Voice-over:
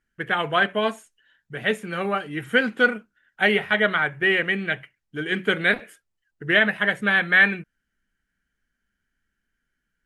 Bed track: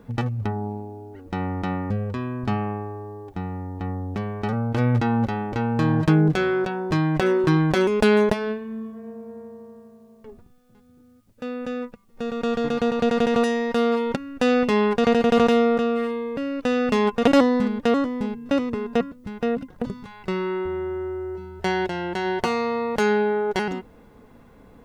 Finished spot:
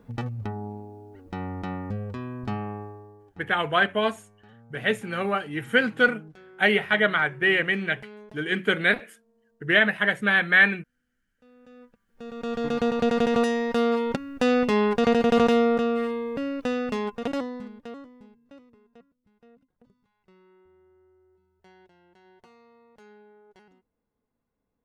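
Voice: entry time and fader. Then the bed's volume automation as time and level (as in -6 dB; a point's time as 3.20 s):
3.20 s, -1.0 dB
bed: 2.83 s -6 dB
3.78 s -28 dB
11.35 s -28 dB
12.73 s -2 dB
16.48 s -2 dB
18.85 s -32 dB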